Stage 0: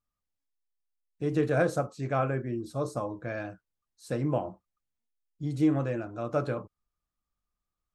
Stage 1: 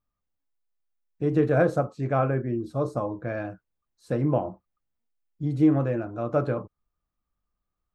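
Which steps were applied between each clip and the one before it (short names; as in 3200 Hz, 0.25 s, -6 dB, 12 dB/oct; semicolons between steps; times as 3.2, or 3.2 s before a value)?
bell 9300 Hz -13 dB 2.9 oct; gain +5 dB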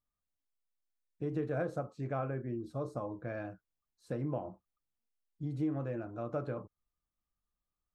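compressor 2:1, threshold -27 dBFS, peak gain reduction 7 dB; gain -8 dB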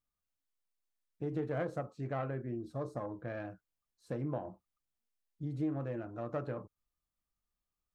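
self-modulated delay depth 0.11 ms; gain -1 dB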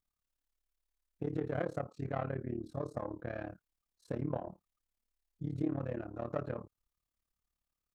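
AM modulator 36 Hz, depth 85%; gain +4 dB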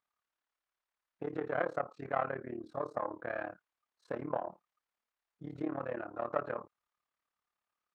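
band-pass 1200 Hz, Q 0.95; gain +8.5 dB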